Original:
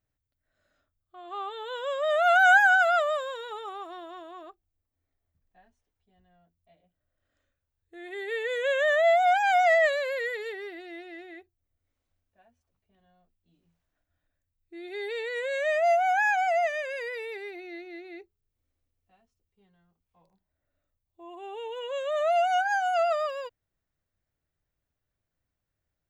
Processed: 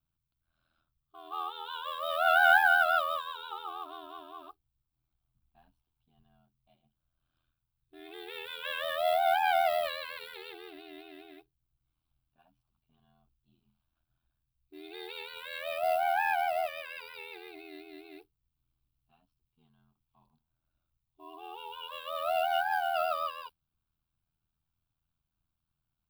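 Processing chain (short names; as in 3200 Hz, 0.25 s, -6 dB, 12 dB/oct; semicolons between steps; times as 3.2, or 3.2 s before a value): modulation noise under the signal 25 dB; fixed phaser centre 1900 Hz, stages 6; ring modulator 41 Hz; gain +3 dB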